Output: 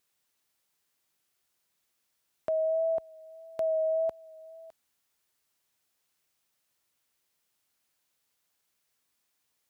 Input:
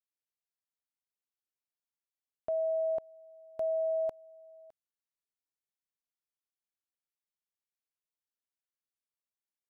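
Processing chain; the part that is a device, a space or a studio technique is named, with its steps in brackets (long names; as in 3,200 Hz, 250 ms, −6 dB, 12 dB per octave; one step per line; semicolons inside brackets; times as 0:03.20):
noise-reduction cassette on a plain deck (one half of a high-frequency compander encoder only; tape wow and flutter 24 cents; white noise bed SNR 42 dB)
high-pass filter 44 Hz
level +3 dB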